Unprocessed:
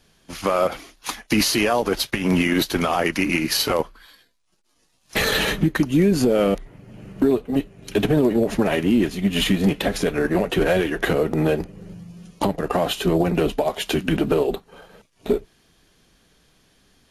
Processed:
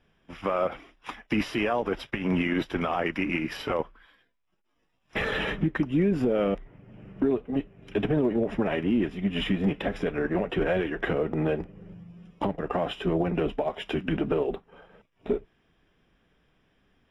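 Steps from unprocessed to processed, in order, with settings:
Savitzky-Golay smoothing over 25 samples
level −6.5 dB

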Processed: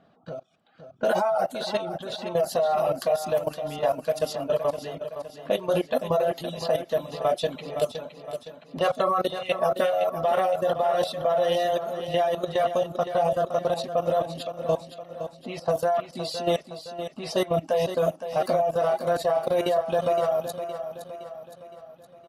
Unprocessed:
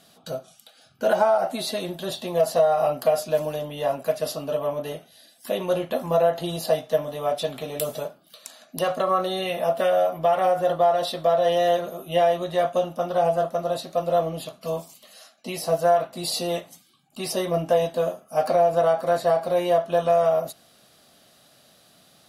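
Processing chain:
low-pass that shuts in the quiet parts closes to 1,300 Hz, open at −20 dBFS
output level in coarse steps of 13 dB
reverb reduction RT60 0.83 s
on a send: repeating echo 515 ms, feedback 50%, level −10 dB
on the sum: level +5 dB

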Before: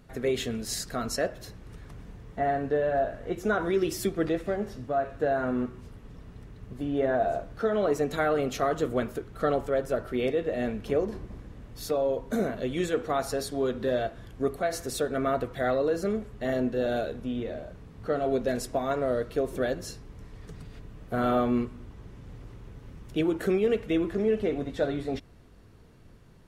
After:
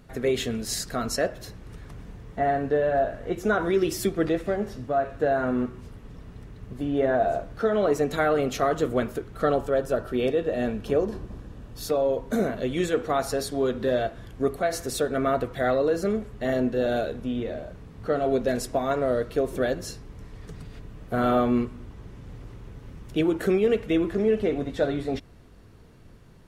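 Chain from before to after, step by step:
0:09.49–0:11.89: notch filter 2,100 Hz, Q 6.1
level +3 dB

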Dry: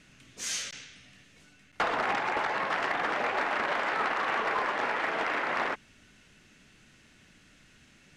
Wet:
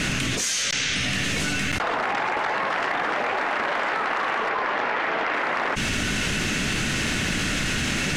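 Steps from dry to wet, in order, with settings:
0:04.49–0:05.34: low-pass filter 5,700 Hz 12 dB per octave
envelope flattener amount 100%

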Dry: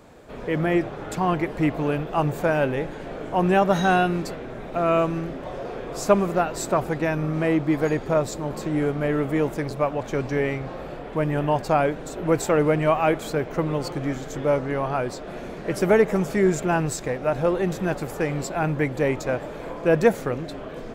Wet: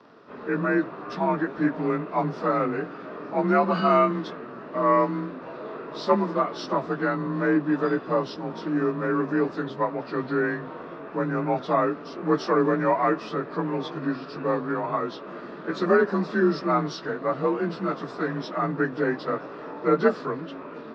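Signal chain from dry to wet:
partials spread apart or drawn together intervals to 90%
loudspeaker in its box 270–4,100 Hz, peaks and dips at 370 Hz −4 dB, 530 Hz −9 dB, 780 Hz −7 dB, 1,200 Hz +3 dB, 2,100 Hz −7 dB, 3,000 Hz −7 dB
level +5 dB

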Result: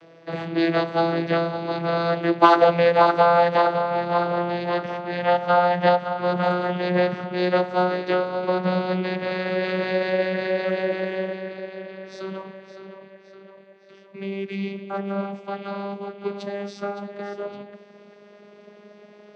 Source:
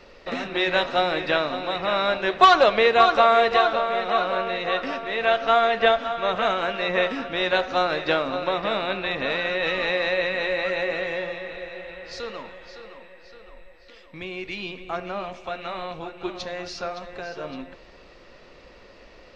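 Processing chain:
vocoder with a gliding carrier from E3, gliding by +4 semitones
level +1.5 dB

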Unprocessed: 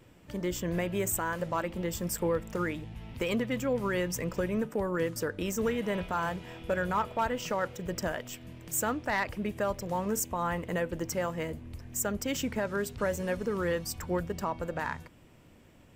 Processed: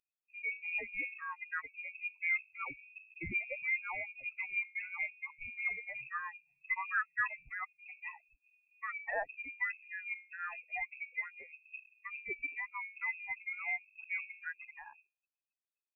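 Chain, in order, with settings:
spectral dynamics exaggerated over time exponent 3
mains-hum notches 50/100/150/200/250/300/350/400/450 Hz
voice inversion scrambler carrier 2,600 Hz

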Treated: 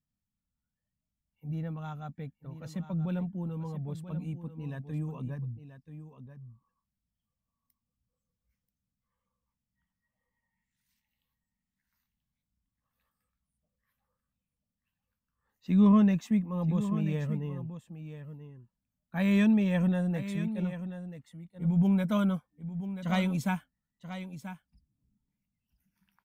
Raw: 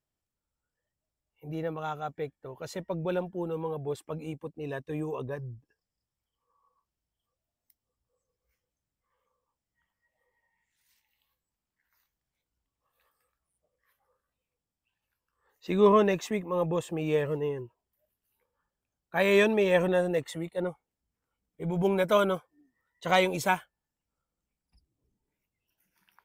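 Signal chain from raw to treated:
low shelf with overshoot 290 Hz +9.5 dB, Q 3
on a send: single-tap delay 984 ms −11.5 dB
on the sum: level −8.5 dB

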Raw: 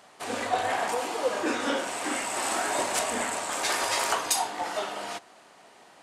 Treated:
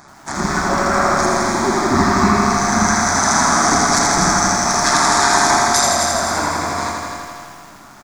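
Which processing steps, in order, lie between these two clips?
low-shelf EQ 140 Hz +8 dB
mains-hum notches 50/100/150/200 Hz
speed change −25%
amplitude modulation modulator 140 Hz, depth 55%
phaser with its sweep stopped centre 1,200 Hz, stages 4
repeating echo 267 ms, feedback 44%, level −11 dB
on a send at −12.5 dB: convolution reverb RT60 2.3 s, pre-delay 50 ms
on the sum: boost into a limiter +21.5 dB
feedback echo at a low word length 82 ms, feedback 80%, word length 7 bits, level −4 dB
level −3.5 dB

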